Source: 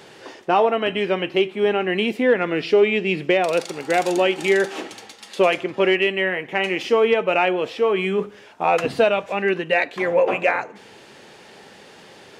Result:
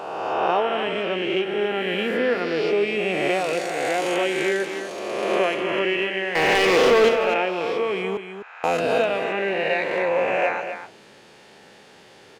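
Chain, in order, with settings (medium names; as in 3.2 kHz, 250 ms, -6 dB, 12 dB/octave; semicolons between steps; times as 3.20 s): reverse spectral sustain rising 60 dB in 1.97 s; 6.35–7.09 s: waveshaping leveller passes 3; 8.17–8.64 s: ladder band-pass 1.8 kHz, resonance 65%; delay 252 ms -9 dB; trim -7.5 dB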